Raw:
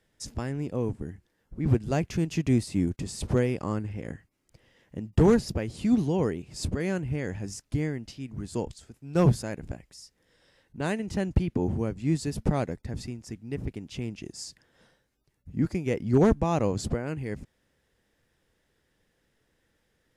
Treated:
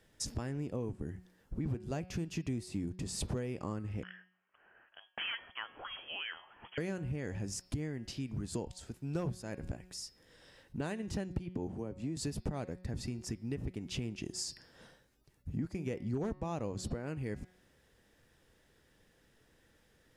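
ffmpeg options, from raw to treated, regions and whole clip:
-filter_complex "[0:a]asettb=1/sr,asplit=3[a][b][c];[a]atrim=end=4.034[d];[b]atrim=start=4.03:end=6.78,asetpts=PTS-STARTPTS,afade=t=in:d=0.004:c=qsin,afade=t=out:st=2.746:d=0.004:c=qsin,highpass=1.4k,lowpass=f=3k:t=q:w=0.5098,lowpass=f=3k:t=q:w=0.6013,lowpass=f=3k:t=q:w=0.9,lowpass=f=3k:t=q:w=2.563,afreqshift=-3500[e];[c]atrim=start=6.776[f];[d][e]acrossfade=d=0.004:c1=hsin:c2=qsin[g];[g][f]acrossfade=d=0.004:c1=qsin:c2=hsin,asettb=1/sr,asplit=3[h][i][j];[h]atrim=end=11.674[k];[i]atrim=start=11.67:end=12.17,asetpts=PTS-STARTPTS,afade=t=in:d=0.004:c=qsin,afade=t=out:st=0.496:d=0.004:c=qsin,lowshelf=f=240:g=-8.5,acrossover=split=220|930[l][m][n];[l]acompressor=threshold=-38dB:ratio=4[o];[m]acompressor=threshold=-34dB:ratio=4[p];[n]acompressor=threshold=-59dB:ratio=4[q];[o][p][q]amix=inputs=3:normalize=0[r];[j]atrim=start=12.166[s];[k][r]acrossfade=d=0.004:c1=hsin:c2=qsin[t];[t][s]acrossfade=d=0.004:c1=qsin:c2=hsin,bandreject=f=2.1k:w=28,bandreject=f=183.1:t=h:w=4,bandreject=f=366.2:t=h:w=4,bandreject=f=549.3:t=h:w=4,bandreject=f=732.4:t=h:w=4,bandreject=f=915.5:t=h:w=4,bandreject=f=1.0986k:t=h:w=4,bandreject=f=1.2817k:t=h:w=4,bandreject=f=1.4648k:t=h:w=4,bandreject=f=1.6479k:t=h:w=4,bandreject=f=1.831k:t=h:w=4,bandreject=f=2.0141k:t=h:w=4,bandreject=f=2.1972k:t=h:w=4,bandreject=f=2.3803k:t=h:w=4,bandreject=f=2.5634k:t=h:w=4,bandreject=f=2.7465k:t=h:w=4,bandreject=f=2.9296k:t=h:w=4,bandreject=f=3.1127k:t=h:w=4,bandreject=f=3.2958k:t=h:w=4,bandreject=f=3.4789k:t=h:w=4,bandreject=f=3.662k:t=h:w=4,bandreject=f=3.8451k:t=h:w=4,bandreject=f=4.0282k:t=h:w=4,bandreject=f=4.2113k:t=h:w=4,bandreject=f=4.3944k:t=h:w=4,bandreject=f=4.5775k:t=h:w=4,bandreject=f=4.7606k:t=h:w=4,bandreject=f=4.9437k:t=h:w=4,bandreject=f=5.1268k:t=h:w=4,bandreject=f=5.3099k:t=h:w=4,bandreject=f=5.493k:t=h:w=4,acompressor=threshold=-39dB:ratio=6,volume=4dB"

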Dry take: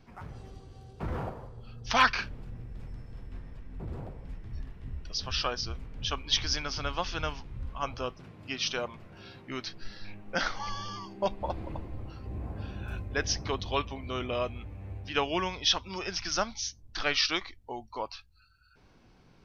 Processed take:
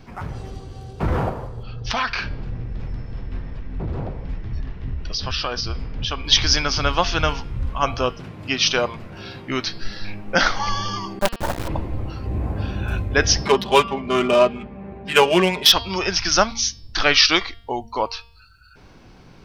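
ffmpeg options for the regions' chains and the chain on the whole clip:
-filter_complex "[0:a]asettb=1/sr,asplit=3[a][b][c];[a]atrim=end=1.634[d];[b]atrim=start=1.63:end=6.25,asetpts=PTS-STARTPTS,afade=t=in:d=0.004:c=qsin,afade=t=out:st=4.616:d=0.004:c=qsin,lowpass=f=5.7k:w=0.5412,lowpass=f=5.7k:w=1.3066,acompressor=threshold=-34dB:ratio=4:attack=3.2:release=140:knee=1:detection=peak[e];[c]atrim=start=6.246[f];[d][e]acrossfade=d=0.004:c1=hsin:c2=qsin[g];[g][f]acrossfade=d=0.004:c1=qsin:c2=hsin,asettb=1/sr,asplit=3[h][i][j];[h]atrim=end=11.194[k];[i]atrim=start=11.19:end=11.68,asetpts=PTS-STARTPTS,afade=t=in:d=0.004:c=qsin,afade=t=out:st=0.486:d=0.004:c=qsin,lowpass=2.8k,acrusher=bits=4:dc=4:mix=0:aa=0.000001[l];[j]atrim=start=11.676[m];[k][l]acrossfade=d=0.004:c1=hsin:c2=qsin[n];[n][m]acrossfade=d=0.004:c1=qsin:c2=hsin,asettb=1/sr,asplit=3[o][p][q];[o]atrim=end=13.454[r];[p]atrim=start=13.45:end=15.72,asetpts=PTS-STARTPTS,afade=t=in:d=0.004:c=qsin,afade=t=out:st=2.266:d=0.004:c=qsin,aecho=1:1:5:0.88,atrim=end_sample=100107,adynamicsmooth=sensitivity=5:basefreq=1.7k,highpass=130[s];[q]atrim=start=15.716[t];[r][s]acrossfade=d=0.004:c1=hsin:c2=qsin[u];[u][t]acrossfade=d=0.004:c1=qsin:c2=hsin,bandreject=f=231.7:t=h:w=4,bandreject=f=463.4:t=h:w=4,bandreject=f=695.1:t=h:w=4,bandreject=f=926.8:t=h:w=4,bandreject=f=1.1585k:t=h:w=4,bandreject=f=1.3902k:t=h:w=4,bandreject=f=1.6219k:t=h:w=4,bandreject=f=1.8536k:t=h:w=4,bandreject=f=2.0853k:t=h:w=4,bandreject=f=2.317k:t=h:w=4,bandreject=f=2.5487k:t=h:w=4,bandreject=f=2.7804k:t=h:w=4,bandreject=f=3.0121k:t=h:w=4,bandreject=f=3.2438k:t=h:w=4,bandreject=f=3.4755k:t=h:w=4,bandreject=f=3.7072k:t=h:w=4,bandreject=f=3.9389k:t=h:w=4,bandreject=f=4.1706k:t=h:w=4,bandreject=f=4.4023k:t=h:w=4,bandreject=f=4.634k:t=h:w=4,bandreject=f=4.8657k:t=h:w=4,bandreject=f=5.0974k:t=h:w=4,bandreject=f=5.3291k:t=h:w=4,alimiter=level_in=14dB:limit=-1dB:release=50:level=0:latency=1,volume=-1dB"

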